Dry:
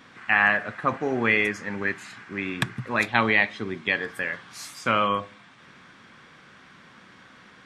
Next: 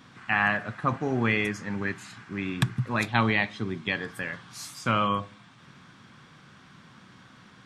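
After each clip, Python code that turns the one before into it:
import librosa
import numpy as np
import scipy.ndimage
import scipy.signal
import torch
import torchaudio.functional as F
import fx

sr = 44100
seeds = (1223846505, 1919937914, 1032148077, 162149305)

y = fx.graphic_eq(x, sr, hz=(125, 500, 2000), db=(7, -5, -6))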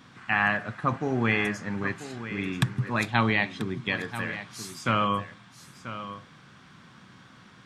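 y = x + 10.0 ** (-12.5 / 20.0) * np.pad(x, (int(987 * sr / 1000.0), 0))[:len(x)]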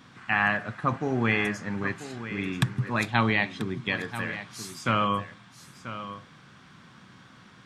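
y = x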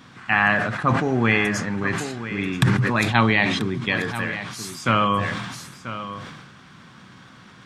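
y = fx.sustainer(x, sr, db_per_s=38.0)
y = y * librosa.db_to_amplitude(5.0)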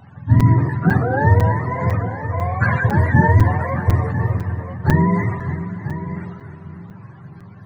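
y = fx.octave_mirror(x, sr, pivot_hz=450.0)
y = fx.echo_split(y, sr, split_hz=400.0, low_ms=591, high_ms=301, feedback_pct=52, wet_db=-11)
y = fx.buffer_crackle(y, sr, first_s=0.4, period_s=0.5, block=256, kind='zero')
y = y * librosa.db_to_amplitude(3.5)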